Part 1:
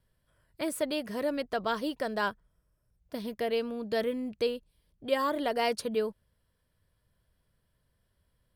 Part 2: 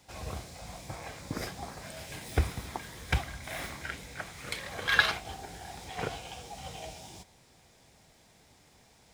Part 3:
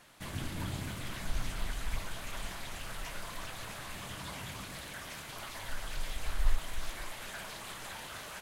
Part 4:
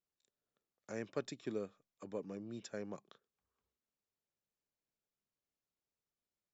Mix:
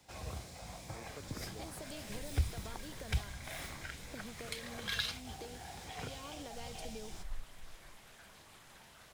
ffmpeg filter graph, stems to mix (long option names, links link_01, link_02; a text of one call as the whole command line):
ffmpeg -i stem1.wav -i stem2.wav -i stem3.wav -i stem4.wav -filter_complex "[0:a]acrossover=split=150[link_01][link_02];[link_02]acompressor=threshold=-41dB:ratio=6[link_03];[link_01][link_03]amix=inputs=2:normalize=0,adelay=1000,volume=-3dB[link_04];[1:a]volume=-3.5dB[link_05];[2:a]adelay=850,volume=-15dB[link_06];[3:a]volume=-9.5dB[link_07];[link_04][link_05][link_06][link_07]amix=inputs=4:normalize=0,acrossover=split=150|3000[link_08][link_09][link_10];[link_09]acompressor=threshold=-45dB:ratio=4[link_11];[link_08][link_11][link_10]amix=inputs=3:normalize=0" out.wav